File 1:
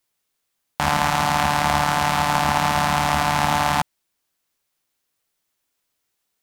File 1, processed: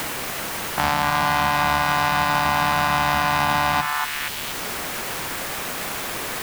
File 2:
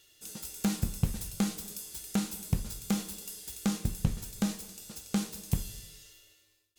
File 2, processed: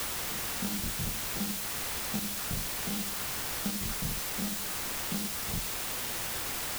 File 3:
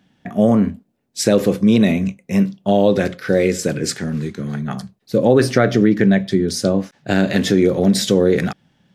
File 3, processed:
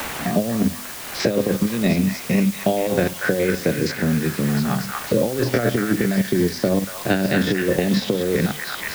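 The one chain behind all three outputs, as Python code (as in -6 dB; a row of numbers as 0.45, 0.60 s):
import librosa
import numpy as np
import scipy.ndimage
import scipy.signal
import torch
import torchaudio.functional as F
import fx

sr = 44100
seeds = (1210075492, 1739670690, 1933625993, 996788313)

p1 = fx.spec_steps(x, sr, hold_ms=50)
p2 = scipy.signal.sosfilt(scipy.signal.butter(4, 5400.0, 'lowpass', fs=sr, output='sos'), p1)
p3 = fx.hum_notches(p2, sr, base_hz=50, count=5)
p4 = fx.transient(p3, sr, attack_db=-1, sustain_db=-6)
p5 = fx.over_compress(p4, sr, threshold_db=-18.0, ratio=-0.5)
p6 = p5 + fx.echo_stepped(p5, sr, ms=236, hz=1400.0, octaves=0.7, feedback_pct=70, wet_db=-1.5, dry=0)
p7 = fx.quant_dither(p6, sr, seeds[0], bits=6, dither='triangular')
y = fx.band_squash(p7, sr, depth_pct=70)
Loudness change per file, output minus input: -2.0, +2.5, -4.0 LU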